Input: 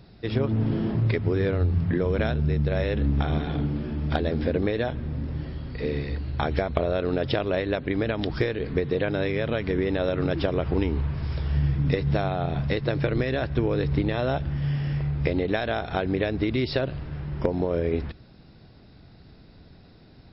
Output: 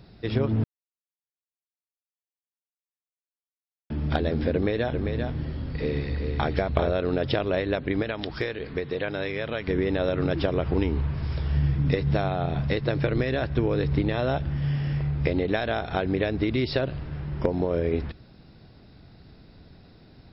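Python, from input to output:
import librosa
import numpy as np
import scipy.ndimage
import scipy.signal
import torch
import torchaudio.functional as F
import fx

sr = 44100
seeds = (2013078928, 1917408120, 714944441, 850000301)

y = fx.echo_single(x, sr, ms=394, db=-5.5, at=(4.53, 6.91))
y = fx.low_shelf(y, sr, hz=470.0, db=-8.0, at=(8.02, 9.68))
y = fx.edit(y, sr, fx.silence(start_s=0.64, length_s=3.26), tone=tone)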